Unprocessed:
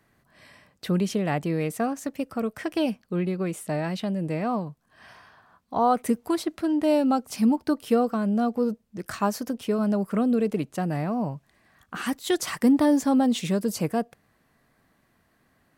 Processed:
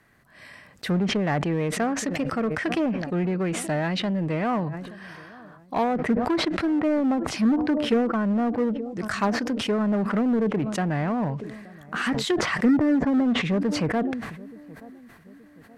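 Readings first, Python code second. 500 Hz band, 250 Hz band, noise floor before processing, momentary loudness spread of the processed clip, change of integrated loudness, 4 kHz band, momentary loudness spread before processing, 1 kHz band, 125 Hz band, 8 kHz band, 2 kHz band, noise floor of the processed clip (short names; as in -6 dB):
+0.5 dB, +1.0 dB, -67 dBFS, 13 LU, +1.0 dB, +5.0 dB, 9 LU, -0.5 dB, +2.5 dB, 0.0 dB, +7.0 dB, -52 dBFS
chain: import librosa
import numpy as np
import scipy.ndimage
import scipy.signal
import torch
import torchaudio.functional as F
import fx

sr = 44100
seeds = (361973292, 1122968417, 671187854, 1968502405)

p1 = fx.env_lowpass_down(x, sr, base_hz=520.0, full_db=-17.5)
p2 = fx.echo_filtered(p1, sr, ms=875, feedback_pct=47, hz=1100.0, wet_db=-22.5)
p3 = 10.0 ** (-26.0 / 20.0) * (np.abs((p2 / 10.0 ** (-26.0 / 20.0) + 3.0) % 4.0 - 2.0) - 1.0)
p4 = p2 + (p3 * librosa.db_to_amplitude(-9.0))
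p5 = fx.peak_eq(p4, sr, hz=1800.0, db=5.5, octaves=0.89)
y = fx.sustainer(p5, sr, db_per_s=46.0)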